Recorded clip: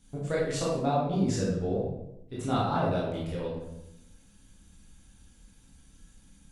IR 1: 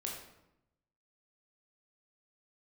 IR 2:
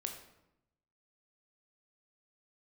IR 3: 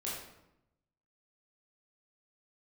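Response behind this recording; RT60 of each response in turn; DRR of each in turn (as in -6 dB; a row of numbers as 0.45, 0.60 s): 3; 0.85, 0.85, 0.85 s; -2.0, 3.5, -7.0 dB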